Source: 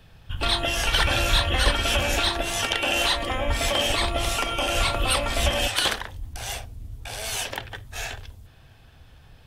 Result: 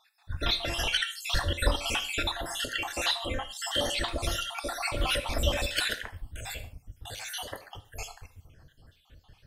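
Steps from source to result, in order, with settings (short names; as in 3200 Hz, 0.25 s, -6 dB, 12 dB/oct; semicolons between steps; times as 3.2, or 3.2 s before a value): random spectral dropouts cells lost 60%; non-linear reverb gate 0.17 s falling, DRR 9.5 dB; gain -3 dB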